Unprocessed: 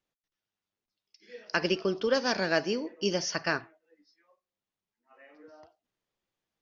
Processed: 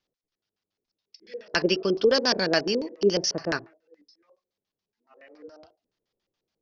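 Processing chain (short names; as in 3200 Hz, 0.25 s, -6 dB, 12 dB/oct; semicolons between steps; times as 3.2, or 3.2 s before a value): LFO low-pass square 7.1 Hz 450–5000 Hz; downsampling 16000 Hz; gain +2.5 dB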